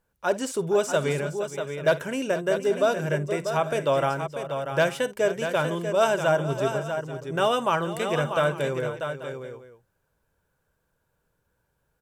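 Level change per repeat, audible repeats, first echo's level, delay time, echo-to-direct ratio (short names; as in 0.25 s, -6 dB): no steady repeat, 4, -17.0 dB, 54 ms, -6.5 dB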